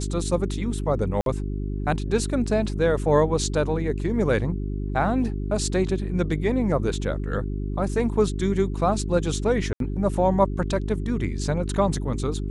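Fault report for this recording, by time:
mains hum 50 Hz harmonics 8 −28 dBFS
0:01.21–0:01.26: drop-out 52 ms
0:09.73–0:09.80: drop-out 72 ms

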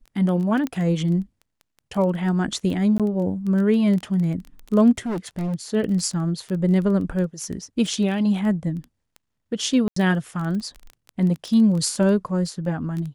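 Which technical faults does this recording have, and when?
surface crackle 13 per second −27 dBFS
0:00.67: click −15 dBFS
0:02.98–0:03.00: drop-out 17 ms
0:05.06–0:05.55: clipping −23 dBFS
0:09.88–0:09.96: drop-out 84 ms

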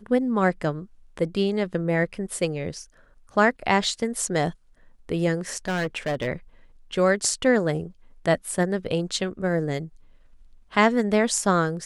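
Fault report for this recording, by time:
0:05.65–0:06.27: clipping −22 dBFS

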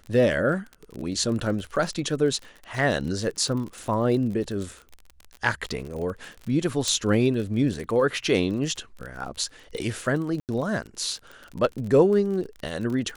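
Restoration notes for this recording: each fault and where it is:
surface crackle 35 per second −32 dBFS
0:06.88: click
0:10.40–0:10.49: drop-out 88 ms

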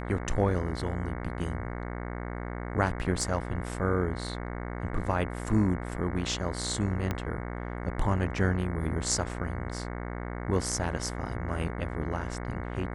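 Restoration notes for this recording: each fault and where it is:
mains buzz 60 Hz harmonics 37 −36 dBFS
0:03.21: drop-out 2.4 ms
0:07.11: click −16 dBFS

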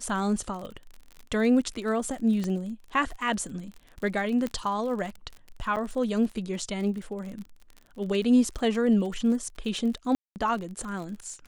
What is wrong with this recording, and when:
surface crackle 44 per second −35 dBFS
0:02.44: click −19 dBFS
0:04.47: click −18 dBFS
0:05.76–0:05.77: drop-out 7.1 ms
0:10.15–0:10.36: drop-out 209 ms

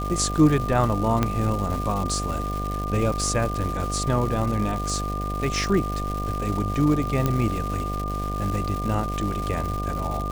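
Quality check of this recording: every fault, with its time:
mains buzz 50 Hz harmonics 15 −29 dBFS
surface crackle 410 per second −29 dBFS
whistle 1,200 Hz −30 dBFS
0:01.23: click −8 dBFS
0:07.26: click −9 dBFS

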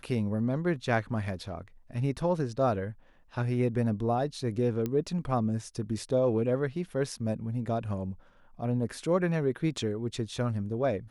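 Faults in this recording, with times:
0:04.86: click −19 dBFS

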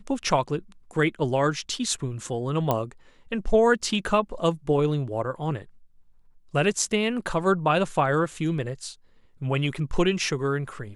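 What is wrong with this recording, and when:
0:02.71: click −10 dBFS

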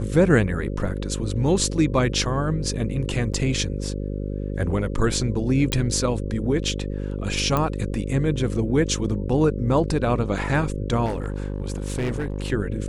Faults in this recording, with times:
mains buzz 50 Hz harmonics 11 −28 dBFS
0:03.33–0:03.34: drop-out 7 ms
0:05.72: click −9 dBFS
0:07.57: click −9 dBFS
0:11.05–0:12.52: clipping −21.5 dBFS

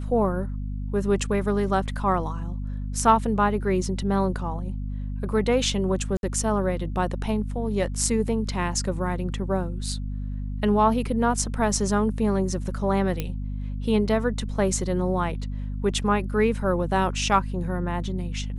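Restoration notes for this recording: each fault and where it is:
mains hum 50 Hz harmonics 5 −30 dBFS
0:06.17–0:06.23: drop-out 61 ms
0:13.20: click −13 dBFS

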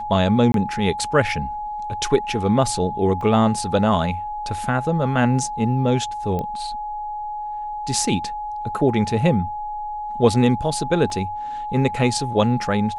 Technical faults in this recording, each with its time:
whistle 840 Hz −26 dBFS
0:00.52–0:00.54: drop-out 22 ms
0:03.21: drop-out 2.9 ms
0:06.39: click −15 dBFS
0:11.10: drop-out 3.1 ms

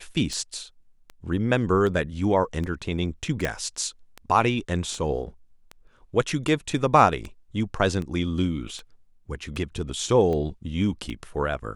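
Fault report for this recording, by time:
scratch tick 78 rpm −21 dBFS
0:03.45: click −12 dBFS

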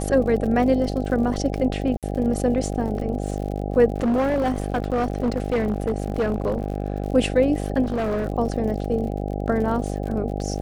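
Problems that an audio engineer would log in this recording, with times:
mains buzz 50 Hz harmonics 16 −27 dBFS
surface crackle 63 per second −31 dBFS
0:01.97–0:02.03: drop-out 57 ms
0:03.96–0:07.04: clipping −17.5 dBFS
0:07.83–0:08.26: clipping −20.5 dBFS

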